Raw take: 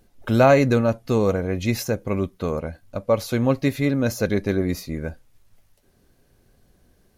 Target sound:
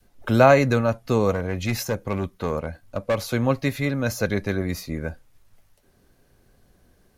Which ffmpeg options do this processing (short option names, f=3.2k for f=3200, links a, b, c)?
-filter_complex "[0:a]adynamicequalizer=threshold=0.0251:dfrequency=330:dqfactor=0.85:tfrequency=330:tqfactor=0.85:attack=5:release=100:ratio=0.375:range=3.5:mode=cutabove:tftype=bell,acrossover=split=240|1600|2100[a][b][c][d];[b]crystalizer=i=6.5:c=0[e];[a][e][c][d]amix=inputs=4:normalize=0,asettb=1/sr,asplit=3[f][g][h];[f]atrim=end=1.324[i];[g]atrim=start=1.32:end=3.19,asetpts=PTS-STARTPTS,afade=t=in:d=0.004:c=qsin,afade=t=out:st=1.866:d=0.004:c=qsin,asoftclip=type=hard:threshold=-17.5dB[j];[h]atrim=start=3.186[k];[i][j]acrossfade=d=0.004:c1=hsin:c2=qsin[l];[l][k]acrossfade=d=0.004:c1=qsin:c2=hsin"